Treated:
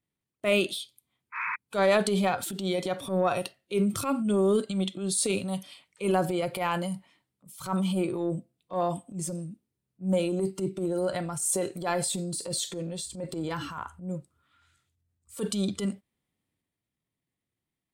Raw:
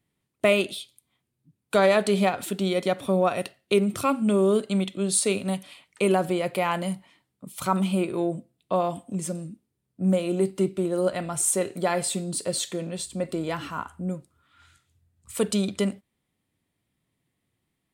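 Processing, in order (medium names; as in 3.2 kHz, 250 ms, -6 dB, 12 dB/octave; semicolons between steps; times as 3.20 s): painted sound noise, 1.32–1.56 s, 900–2600 Hz -28 dBFS; spectral noise reduction 8 dB; transient shaper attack -10 dB, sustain +5 dB; trim -2 dB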